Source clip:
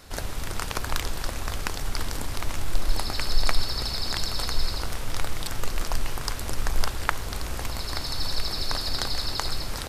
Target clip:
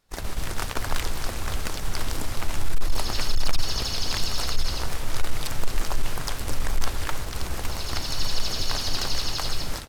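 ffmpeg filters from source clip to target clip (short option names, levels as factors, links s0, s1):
-filter_complex "[0:a]volume=7.08,asoftclip=hard,volume=0.141,agate=range=0.0708:threshold=0.0316:ratio=16:detection=peak,asplit=3[s0][s1][s2];[s1]asetrate=29433,aresample=44100,atempo=1.49831,volume=0.398[s3];[s2]asetrate=55563,aresample=44100,atempo=0.793701,volume=0.501[s4];[s0][s3][s4]amix=inputs=3:normalize=0"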